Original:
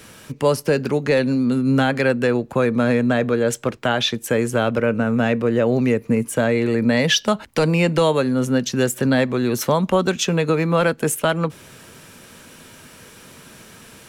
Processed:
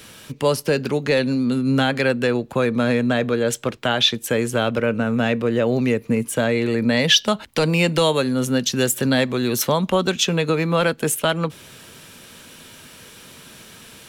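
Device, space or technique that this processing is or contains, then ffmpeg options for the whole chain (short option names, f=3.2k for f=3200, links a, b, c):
presence and air boost: -filter_complex "[0:a]equalizer=f=3.5k:t=o:w=0.95:g=6,highshelf=f=9.9k:g=5,asettb=1/sr,asplit=3[a][b][c];[a]atrim=end=7.724[d];[b]atrim=start=7.72:end=9.62,asetpts=PTS-STARTPTS,afade=t=in:d=0.004:c=qsin,afade=t=out:st=1.896:d=0.004:c=qsin,highshelf=f=5.8k:g=5.5[e];[c]atrim=start=9.616[f];[d][e]acrossfade=d=0.004:c1=hsin:c2=qsin[g];[g][f]acrossfade=d=0.004:c1=qsin:c2=hsin,volume=-1.5dB"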